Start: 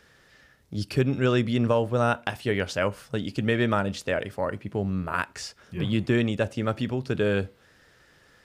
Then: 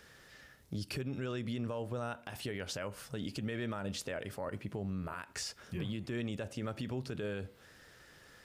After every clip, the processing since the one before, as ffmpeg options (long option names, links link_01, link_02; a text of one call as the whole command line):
ffmpeg -i in.wav -af "highshelf=frequency=7200:gain=6,acompressor=threshold=-30dB:ratio=6,alimiter=level_in=4.5dB:limit=-24dB:level=0:latency=1:release=62,volume=-4.5dB,volume=-1dB" out.wav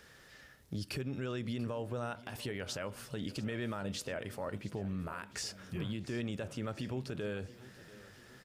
ffmpeg -i in.wav -af "aecho=1:1:688|1376|2064|2752|3440:0.126|0.0718|0.0409|0.0233|0.0133" out.wav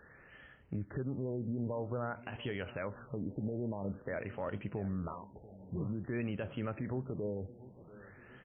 ffmpeg -i in.wav -af "afftfilt=real='re*lt(b*sr/1024,880*pow(3400/880,0.5+0.5*sin(2*PI*0.5*pts/sr)))':imag='im*lt(b*sr/1024,880*pow(3400/880,0.5+0.5*sin(2*PI*0.5*pts/sr)))':win_size=1024:overlap=0.75,volume=1dB" out.wav